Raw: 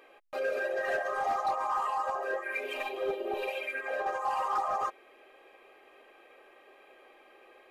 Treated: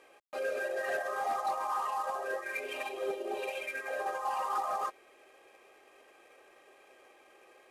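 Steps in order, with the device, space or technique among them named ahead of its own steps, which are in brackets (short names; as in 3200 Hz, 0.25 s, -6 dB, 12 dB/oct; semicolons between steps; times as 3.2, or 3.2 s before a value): early wireless headset (HPF 150 Hz 24 dB/oct; CVSD 64 kbps); gain -2.5 dB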